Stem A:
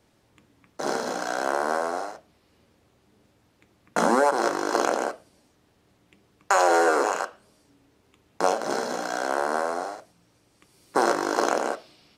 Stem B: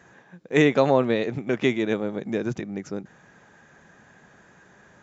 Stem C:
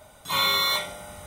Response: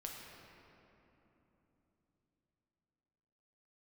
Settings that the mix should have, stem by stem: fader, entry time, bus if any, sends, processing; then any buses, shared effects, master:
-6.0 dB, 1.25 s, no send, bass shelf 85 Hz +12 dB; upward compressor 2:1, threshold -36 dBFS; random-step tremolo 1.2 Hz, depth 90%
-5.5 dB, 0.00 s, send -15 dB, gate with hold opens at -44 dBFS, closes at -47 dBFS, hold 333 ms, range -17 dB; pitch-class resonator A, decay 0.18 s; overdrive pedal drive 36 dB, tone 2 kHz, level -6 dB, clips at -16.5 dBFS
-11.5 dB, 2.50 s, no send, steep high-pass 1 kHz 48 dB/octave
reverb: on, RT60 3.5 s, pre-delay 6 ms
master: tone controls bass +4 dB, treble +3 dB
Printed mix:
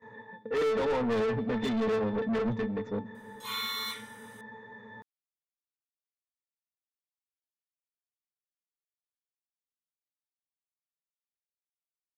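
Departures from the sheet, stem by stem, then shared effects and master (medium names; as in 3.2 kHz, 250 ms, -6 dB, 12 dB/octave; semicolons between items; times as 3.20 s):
stem A: muted; stem C: entry 2.50 s -> 3.15 s; master: missing tone controls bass +4 dB, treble +3 dB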